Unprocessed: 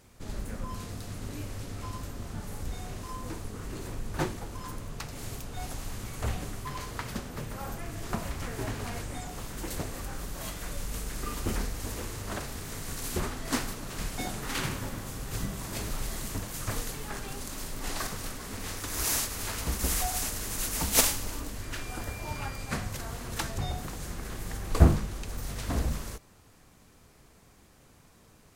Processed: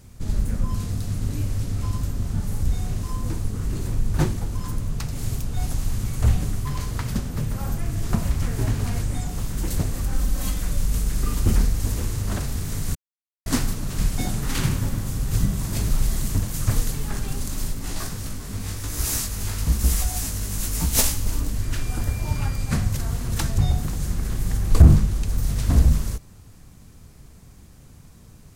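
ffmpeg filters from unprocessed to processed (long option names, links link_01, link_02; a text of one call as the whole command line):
ffmpeg -i in.wav -filter_complex "[0:a]asettb=1/sr,asplit=3[link_01][link_02][link_03];[link_01]atrim=end=10.124[link_04];[link_02]atrim=start=10.12:end=10.61,asetpts=PTS-STARTPTS,afade=type=in:duration=0.004:curve=qsin,afade=type=out:start_time=0.486:duration=0.004:curve=qsin,aecho=1:1:3.9:0.65,atrim=end_sample=21609[link_05];[link_03]atrim=start=10.606[link_06];[link_04][link_05]acrossfade=duration=0.004:curve1=hsin:curve2=qsin[link_07];[link_07][link_06]acrossfade=duration=0.004:curve1=qsin:curve2=hsin,asplit=3[link_08][link_09][link_10];[link_08]afade=type=out:start_time=17.72:duration=0.02[link_11];[link_09]flanger=delay=17:depth=3.4:speed=1,afade=type=in:start_time=17.72:duration=0.02,afade=type=out:start_time=21.25:duration=0.02[link_12];[link_10]afade=type=in:start_time=21.25:duration=0.02[link_13];[link_11][link_12][link_13]amix=inputs=3:normalize=0,asplit=3[link_14][link_15][link_16];[link_14]atrim=end=12.95,asetpts=PTS-STARTPTS,afade=type=out:start_time=12.946:duration=0.004:curve=hsin[link_17];[link_15]atrim=start=12.95:end=13.46,asetpts=PTS-STARTPTS,volume=0[link_18];[link_16]atrim=start=13.46,asetpts=PTS-STARTPTS,afade=type=in:duration=0.004:curve=hsin[link_19];[link_17][link_18][link_19]concat=n=3:v=0:a=1,bass=frequency=250:gain=13,treble=frequency=4000:gain=5,alimiter=level_in=2.5dB:limit=-1dB:release=50:level=0:latency=1,volume=-1dB" out.wav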